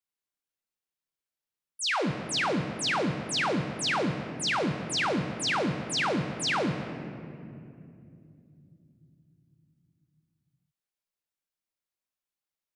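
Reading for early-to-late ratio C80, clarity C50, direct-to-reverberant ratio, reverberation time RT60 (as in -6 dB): 8.0 dB, 7.0 dB, 5.0 dB, 2.6 s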